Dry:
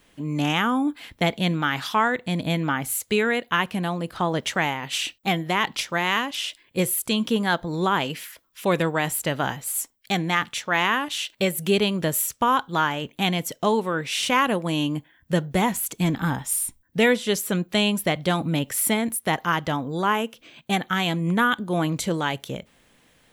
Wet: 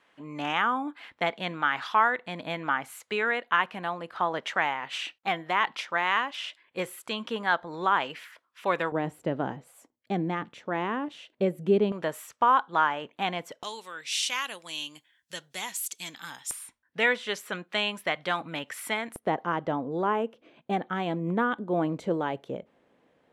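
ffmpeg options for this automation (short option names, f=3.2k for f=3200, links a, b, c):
-af "asetnsamples=n=441:p=0,asendcmd='8.92 bandpass f 340;11.92 bandpass f 1000;13.63 bandpass f 5500;16.51 bandpass f 1500;19.16 bandpass f 480',bandpass=f=1.2k:t=q:w=0.9:csg=0"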